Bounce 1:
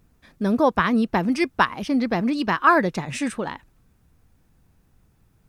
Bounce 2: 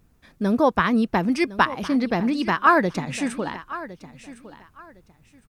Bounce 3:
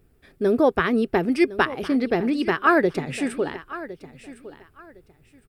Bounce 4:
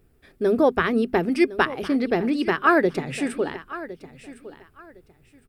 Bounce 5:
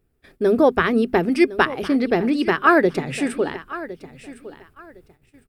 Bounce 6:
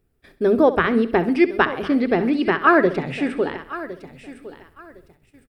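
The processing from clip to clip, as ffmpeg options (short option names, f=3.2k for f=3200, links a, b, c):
-af "aecho=1:1:1059|2118:0.158|0.0349"
-af "equalizer=f=200:t=o:w=0.33:g=-7,equalizer=f=400:t=o:w=0.33:g=11,equalizer=f=1k:t=o:w=0.33:g=-9,equalizer=f=4k:t=o:w=0.33:g=-3,equalizer=f=6.3k:t=o:w=0.33:g=-10"
-af "bandreject=f=50:t=h:w=6,bandreject=f=100:t=h:w=6,bandreject=f=150:t=h:w=6,bandreject=f=200:t=h:w=6,bandreject=f=250:t=h:w=6"
-af "agate=range=-11dB:threshold=-55dB:ratio=16:detection=peak,volume=3dB"
-filter_complex "[0:a]acrossover=split=4100[a][b];[b]acompressor=threshold=-55dB:ratio=4:attack=1:release=60[c];[a][c]amix=inputs=2:normalize=0,aecho=1:1:66|132|198|264:0.188|0.0904|0.0434|0.0208"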